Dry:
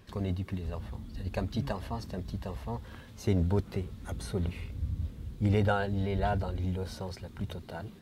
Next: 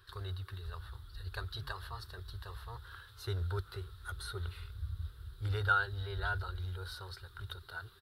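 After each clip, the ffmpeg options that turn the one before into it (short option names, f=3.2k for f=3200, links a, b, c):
-af "firequalizer=gain_entry='entry(100,0);entry(220,-30);entry(380,-3);entry(580,-13);entry(1400,14);entry(2200,-7);entry(3800,11);entry(6400,-7);entry(9600,6)':delay=0.05:min_phase=1,volume=-6dB"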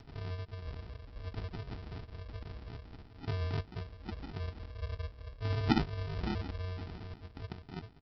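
-af "aresample=11025,acrusher=samples=20:mix=1:aa=0.000001,aresample=44100,acompressor=mode=upward:threshold=-49dB:ratio=2.5,volume=1dB"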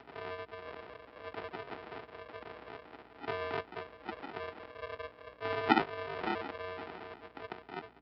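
-filter_complex "[0:a]highpass=120,aeval=exprs='val(0)+0.00126*(sin(2*PI*60*n/s)+sin(2*PI*2*60*n/s)/2+sin(2*PI*3*60*n/s)/3+sin(2*PI*4*60*n/s)/4+sin(2*PI*5*60*n/s)/5)':c=same,acrossover=split=350 3100:gain=0.0794 1 0.0708[a][b][c];[a][b][c]amix=inputs=3:normalize=0,volume=8.5dB"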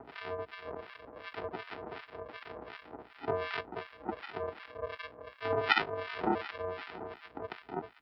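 -filter_complex "[0:a]acrossover=split=1200[a][b];[a]aeval=exprs='val(0)*(1-1/2+1/2*cos(2*PI*2.7*n/s))':c=same[c];[b]aeval=exprs='val(0)*(1-1/2-1/2*cos(2*PI*2.7*n/s))':c=same[d];[c][d]amix=inputs=2:normalize=0,volume=7dB"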